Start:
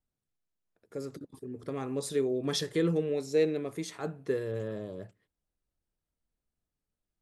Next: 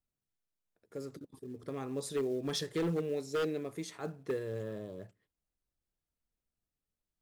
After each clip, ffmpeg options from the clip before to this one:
-filter_complex "[0:a]asplit=2[s0][s1];[s1]acrusher=bits=5:mode=log:mix=0:aa=0.000001,volume=0.596[s2];[s0][s2]amix=inputs=2:normalize=0,aeval=exprs='0.126*(abs(mod(val(0)/0.126+3,4)-2)-1)':c=same,volume=0.398"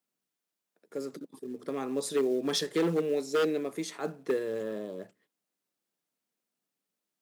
-af "highpass=f=190:w=0.5412,highpass=f=190:w=1.3066,volume=2"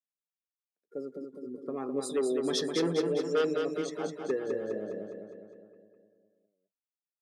-af "afftdn=nr=23:nf=-42,aecho=1:1:205|410|615|820|1025|1230|1435|1640:0.562|0.321|0.183|0.104|0.0594|0.0338|0.0193|0.011,volume=0.794"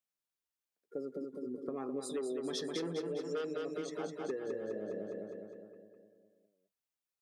-af "acompressor=threshold=0.0126:ratio=4,volume=1.19"

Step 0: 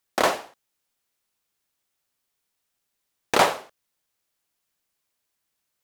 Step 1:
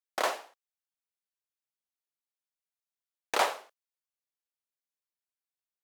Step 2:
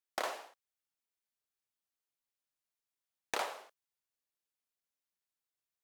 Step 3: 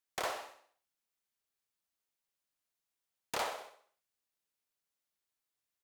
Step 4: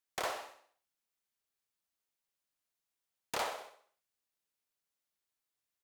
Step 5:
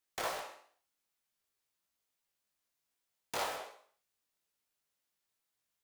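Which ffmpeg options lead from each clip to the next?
-af "highpass=450,agate=range=0.251:threshold=0.00447:ratio=16:detection=peak,volume=0.422"
-af "acompressor=threshold=0.0224:ratio=6"
-af "aeval=exprs='0.0335*(abs(mod(val(0)/0.0335+3,4)-2)-1)':c=same,aecho=1:1:63|126|189|252|315:0.266|0.136|0.0692|0.0353|0.018,volume=1.26"
-af anull
-filter_complex "[0:a]asplit=2[s0][s1];[s1]aeval=exprs='(mod(79.4*val(0)+1,2)-1)/79.4':c=same,volume=0.631[s2];[s0][s2]amix=inputs=2:normalize=0,flanger=delay=18:depth=2.1:speed=2.7,volume=1.26"

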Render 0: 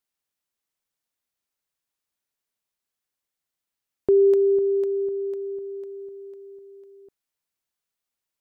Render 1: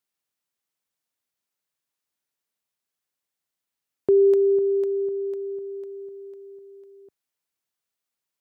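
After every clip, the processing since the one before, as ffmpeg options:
-af "highpass=79"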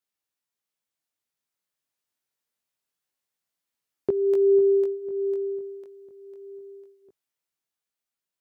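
-af "dynaudnorm=f=300:g=11:m=1.41,flanger=delay=16.5:depth=4.9:speed=0.25"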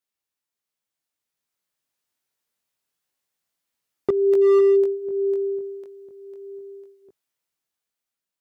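-af "dynaudnorm=f=520:g=5:m=1.58,volume=4.22,asoftclip=hard,volume=0.237"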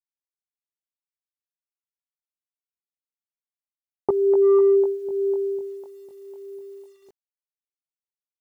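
-af "lowpass=f=870:t=q:w=6.6,acrusher=bits=9:mix=0:aa=0.000001,volume=0.75"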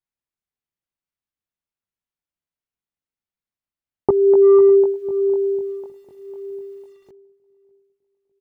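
-filter_complex "[0:a]bass=f=250:g=8,treble=f=4000:g=-9,asplit=2[s0][s1];[s1]adelay=604,lowpass=f=960:p=1,volume=0.0841,asplit=2[s2][s3];[s3]adelay=604,lowpass=f=960:p=1,volume=0.51,asplit=2[s4][s5];[s5]adelay=604,lowpass=f=960:p=1,volume=0.51,asplit=2[s6][s7];[s7]adelay=604,lowpass=f=960:p=1,volume=0.51[s8];[s0][s2][s4][s6][s8]amix=inputs=5:normalize=0,volume=1.58"

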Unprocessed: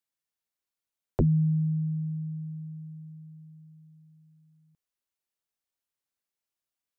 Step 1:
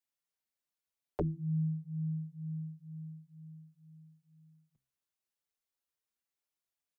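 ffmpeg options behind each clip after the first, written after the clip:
-filter_complex "[0:a]acrossover=split=190|250[s0][s1][s2];[s0]acompressor=threshold=0.0141:ratio=6[s3];[s3][s1][s2]amix=inputs=3:normalize=0,bandreject=f=65.58:t=h:w=4,bandreject=f=131.16:t=h:w=4,bandreject=f=196.74:t=h:w=4,bandreject=f=262.32:t=h:w=4,bandreject=f=327.9:t=h:w=4,asplit=2[s4][s5];[s5]adelay=5.7,afreqshift=2.1[s6];[s4][s6]amix=inputs=2:normalize=1"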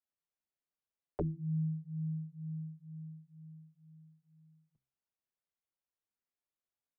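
-af "lowpass=f=1300:p=1,volume=0.841"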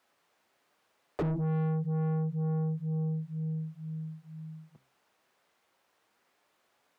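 -filter_complex "[0:a]asplit=2[s0][s1];[s1]highpass=f=720:p=1,volume=100,asoftclip=type=tanh:threshold=0.0708[s2];[s0][s2]amix=inputs=2:normalize=0,lowpass=f=1000:p=1,volume=0.501"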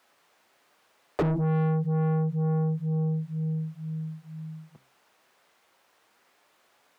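-af "lowshelf=f=360:g=-4,volume=2.51"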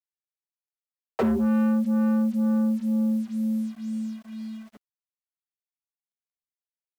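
-af "aecho=1:1:5.6:0.56,afreqshift=62,acrusher=bits=7:mix=0:aa=0.5"

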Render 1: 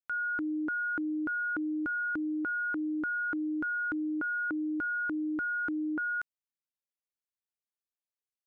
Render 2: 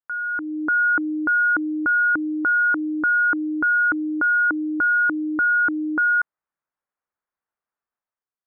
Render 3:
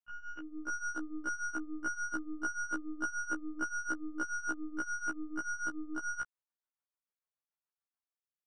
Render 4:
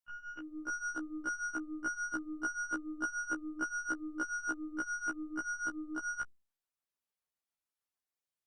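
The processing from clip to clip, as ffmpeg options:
-af "lowpass=f=1400:w=0.5412,lowpass=f=1400:w=1.3066,tiltshelf=f=970:g=-9,dynaudnorm=f=110:g=9:m=2.82,volume=1.88"
-af "aeval=exprs='0.211*(cos(1*acos(clip(val(0)/0.211,-1,1)))-cos(1*PI/2))+0.0211*(cos(6*acos(clip(val(0)/0.211,-1,1)))-cos(6*PI/2))':c=same,tremolo=f=6.9:d=0.69,afftfilt=real='re*1.73*eq(mod(b,3),0)':imag='im*1.73*eq(mod(b,3),0)':win_size=2048:overlap=0.75,volume=0.398"
-ar 48000 -c:a libopus -b:a 64k

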